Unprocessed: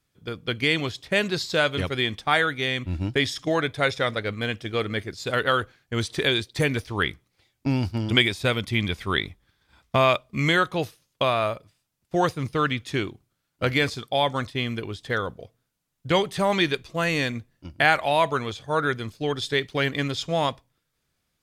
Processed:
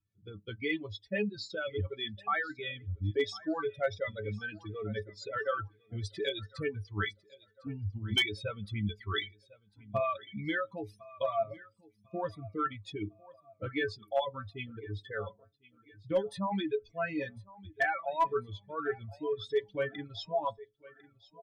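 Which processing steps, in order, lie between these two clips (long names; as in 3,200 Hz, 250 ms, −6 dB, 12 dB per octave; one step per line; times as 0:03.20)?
expanding power law on the bin magnitudes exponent 2.1
stiff-string resonator 100 Hz, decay 0.24 s, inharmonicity 0.008
on a send: repeating echo 1,051 ms, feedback 43%, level −19 dB
on the sum: asymmetric clip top −21 dBFS
reverb reduction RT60 1.6 s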